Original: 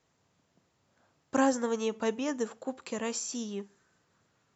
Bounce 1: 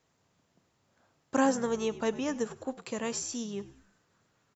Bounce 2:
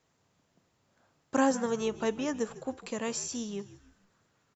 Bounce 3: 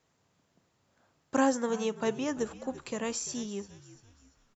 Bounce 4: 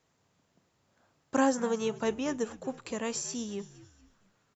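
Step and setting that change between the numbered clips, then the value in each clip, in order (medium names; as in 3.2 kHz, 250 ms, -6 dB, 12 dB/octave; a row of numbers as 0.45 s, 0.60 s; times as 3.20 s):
frequency-shifting echo, time: 101 ms, 152 ms, 342 ms, 231 ms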